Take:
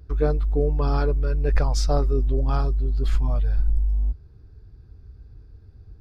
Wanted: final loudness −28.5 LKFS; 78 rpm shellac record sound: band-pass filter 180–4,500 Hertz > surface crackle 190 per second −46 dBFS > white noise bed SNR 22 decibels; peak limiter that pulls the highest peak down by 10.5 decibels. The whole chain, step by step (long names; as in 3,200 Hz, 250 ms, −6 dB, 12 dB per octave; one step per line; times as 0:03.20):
brickwall limiter −20 dBFS
band-pass filter 180–4,500 Hz
surface crackle 190 per second −46 dBFS
white noise bed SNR 22 dB
level +8.5 dB